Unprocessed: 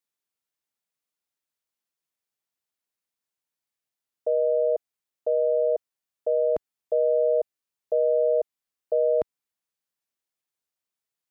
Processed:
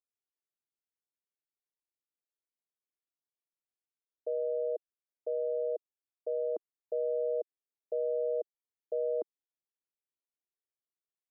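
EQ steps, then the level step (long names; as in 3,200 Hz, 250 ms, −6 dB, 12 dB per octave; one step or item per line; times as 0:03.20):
four-pole ladder band-pass 430 Hz, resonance 45%
0.0 dB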